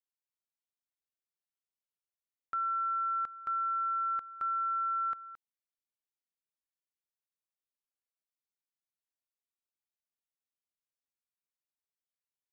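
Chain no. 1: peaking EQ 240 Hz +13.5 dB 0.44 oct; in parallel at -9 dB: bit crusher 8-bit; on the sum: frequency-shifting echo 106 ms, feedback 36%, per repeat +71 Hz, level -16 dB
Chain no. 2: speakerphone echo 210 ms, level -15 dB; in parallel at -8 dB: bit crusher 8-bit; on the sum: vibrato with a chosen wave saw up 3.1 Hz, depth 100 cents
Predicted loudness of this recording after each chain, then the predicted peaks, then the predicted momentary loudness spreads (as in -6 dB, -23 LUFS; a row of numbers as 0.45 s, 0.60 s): -29.5 LUFS, -30.0 LUFS; -25.0 dBFS, -26.0 dBFS; 4 LU, 4 LU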